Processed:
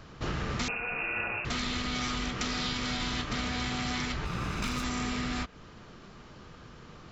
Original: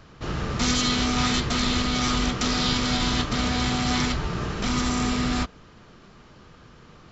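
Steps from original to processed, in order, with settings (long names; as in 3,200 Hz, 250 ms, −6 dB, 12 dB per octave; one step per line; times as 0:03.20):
0:04.25–0:04.84: lower of the sound and its delayed copy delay 0.79 ms
dynamic equaliser 2,100 Hz, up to +5 dB, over −41 dBFS, Q 1.2
downward compressor 10 to 1, threshold −29 dBFS, peak gain reduction 12 dB
0:00.68–0:01.45: voice inversion scrambler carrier 2,700 Hz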